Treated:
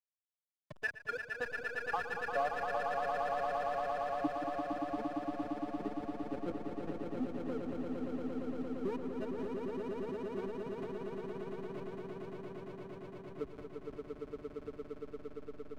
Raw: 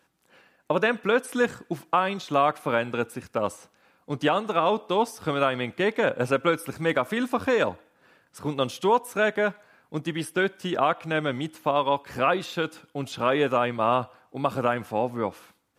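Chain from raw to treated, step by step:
spectral dynamics exaggerated over time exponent 3
power curve on the samples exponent 1.4
delay that swaps between a low-pass and a high-pass 171 ms, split 1,100 Hz, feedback 70%, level −9 dB
band-pass filter sweep 2,000 Hz → 260 Hz, 0:00.51–0:03.63
slack as between gear wheels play −36.5 dBFS
echo that builds up and dies away 115 ms, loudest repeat 8, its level −6 dB
multiband upward and downward compressor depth 40%
level +1 dB

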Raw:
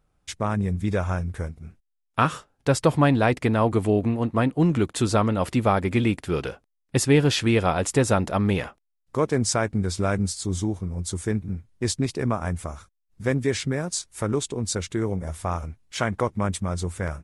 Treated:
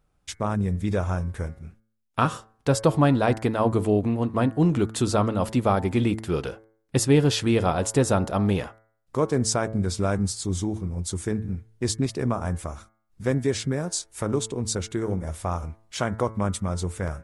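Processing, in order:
dynamic equaliser 2,100 Hz, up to −6 dB, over −41 dBFS, Q 1.4
hum removal 110.3 Hz, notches 20

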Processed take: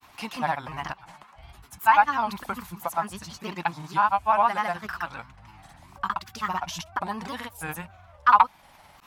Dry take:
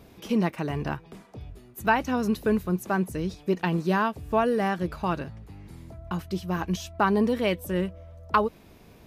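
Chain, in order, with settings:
low shelf with overshoot 650 Hz −12 dB, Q 3
in parallel at −1.5 dB: downward compressor, threshold −34 dBFS, peak gain reduction 21 dB
on the sum: pitch vibrato 1.9 Hz 28 cents
granular cloud, pitch spread up and down by 3 semitones

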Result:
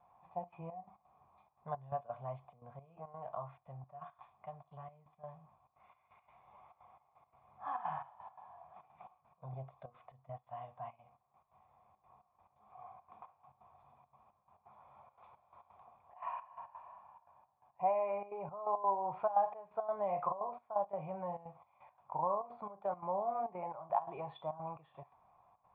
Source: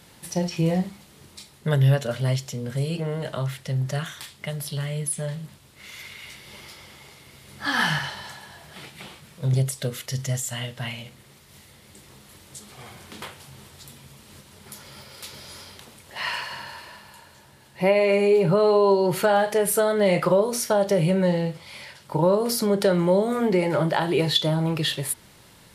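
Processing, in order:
parametric band 350 Hz −10 dB 1.6 octaves
0:10.95–0:13.28: downward compressor, threshold −40 dBFS, peak gain reduction 7 dB
gate pattern "xxxxx.xx..x." 172 BPM −12 dB
formant resonators in series a
level +5 dB

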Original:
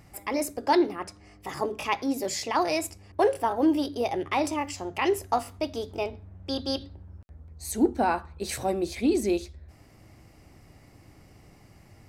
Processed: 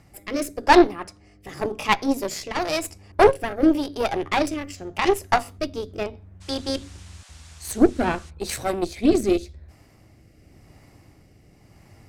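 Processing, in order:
harmonic generator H 4 −13 dB, 7 −24 dB, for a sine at −10.5 dBFS
rotating-speaker cabinet horn 0.9 Hz
0:06.40–0:08.29: noise in a band 590–8,600 Hz −59 dBFS
level +8 dB

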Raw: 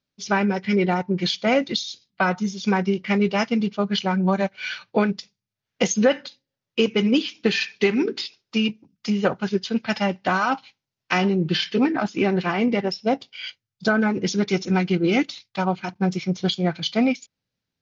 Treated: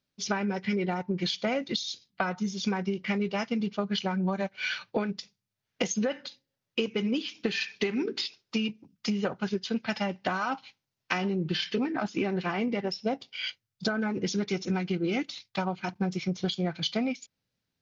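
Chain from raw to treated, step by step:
downward compressor, threshold −26 dBFS, peak gain reduction 13 dB

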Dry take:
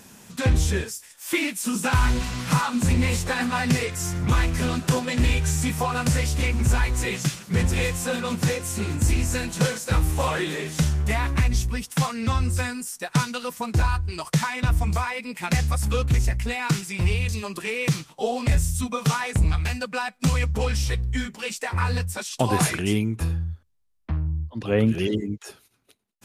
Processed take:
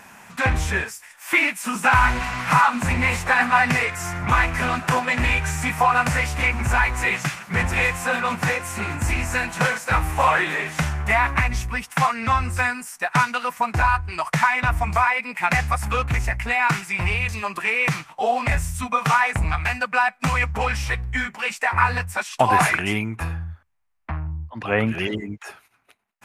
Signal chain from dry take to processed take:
flat-topped bell 1,300 Hz +13 dB 2.3 octaves
level −3 dB

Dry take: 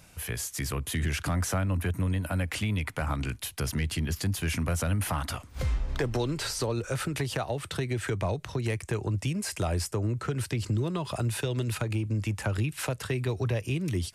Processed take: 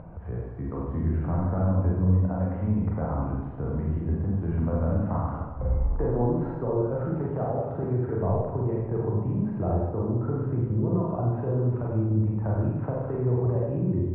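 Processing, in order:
low-pass filter 1,000 Hz 24 dB per octave
four-comb reverb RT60 1.1 s, combs from 33 ms, DRR −4.5 dB
upward compression, threshold −32 dBFS
level −1 dB

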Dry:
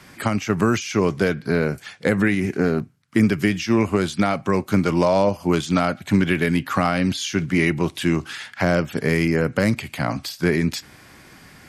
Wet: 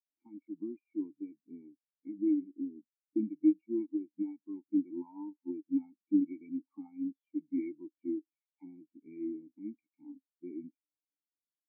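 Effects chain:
formant filter u
tape wow and flutter 18 cents
every bin expanded away from the loudest bin 2.5 to 1

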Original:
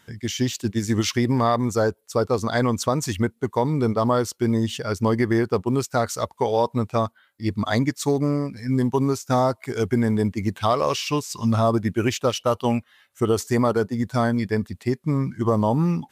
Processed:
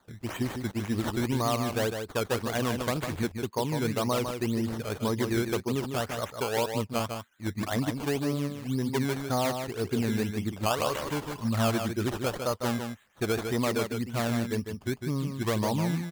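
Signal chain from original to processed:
sample-and-hold swept by an LFO 16×, swing 100% 1.9 Hz
on a send: single-tap delay 153 ms −6.5 dB
on the sum: level −8 dB

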